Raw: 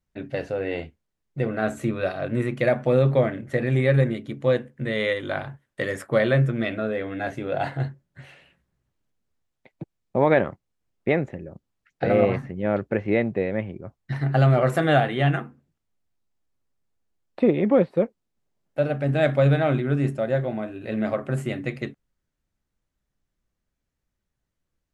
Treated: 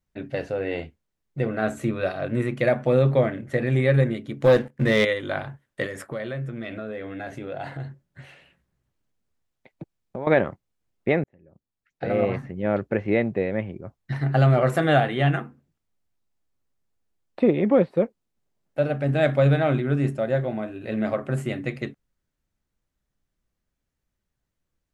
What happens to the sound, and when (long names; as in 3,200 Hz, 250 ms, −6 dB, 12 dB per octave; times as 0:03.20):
0:04.42–0:05.05: leveller curve on the samples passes 2
0:05.86–0:10.27: downward compressor 3 to 1, threshold −31 dBFS
0:11.24–0:12.69: fade in